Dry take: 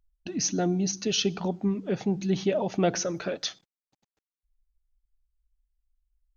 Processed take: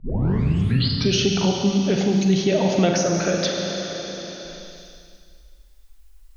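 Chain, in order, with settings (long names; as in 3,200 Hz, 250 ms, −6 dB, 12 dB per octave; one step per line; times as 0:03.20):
turntable start at the beginning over 1.17 s
four-comb reverb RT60 2.1 s, combs from 32 ms, DRR 1.5 dB
multiband upward and downward compressor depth 70%
level +5.5 dB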